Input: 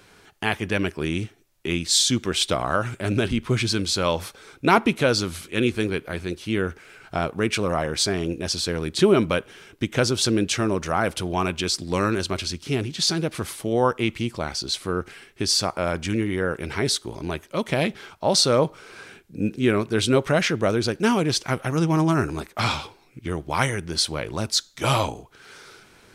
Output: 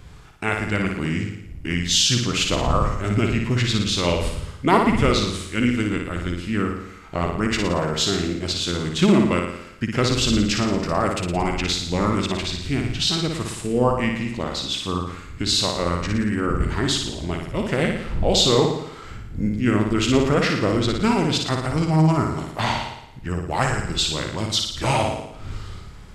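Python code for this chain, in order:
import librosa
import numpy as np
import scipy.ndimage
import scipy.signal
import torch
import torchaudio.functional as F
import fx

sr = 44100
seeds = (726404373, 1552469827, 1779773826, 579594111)

y = fx.dmg_wind(x, sr, seeds[0], corner_hz=93.0, level_db=-35.0)
y = fx.formant_shift(y, sr, semitones=-3)
y = fx.room_flutter(y, sr, wall_m=9.8, rt60_s=0.77)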